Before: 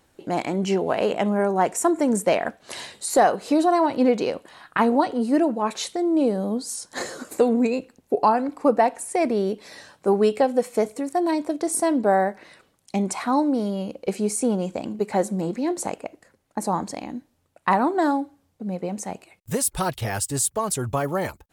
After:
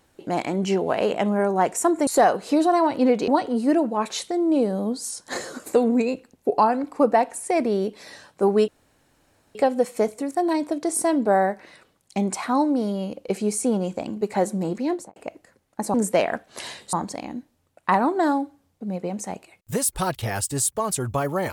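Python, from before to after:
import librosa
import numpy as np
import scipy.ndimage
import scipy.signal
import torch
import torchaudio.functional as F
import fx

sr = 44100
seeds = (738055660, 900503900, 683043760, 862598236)

y = fx.studio_fade_out(x, sr, start_s=15.68, length_s=0.26)
y = fx.edit(y, sr, fx.move(start_s=2.07, length_s=0.99, to_s=16.72),
    fx.cut(start_s=4.27, length_s=0.66),
    fx.insert_room_tone(at_s=10.33, length_s=0.87), tone=tone)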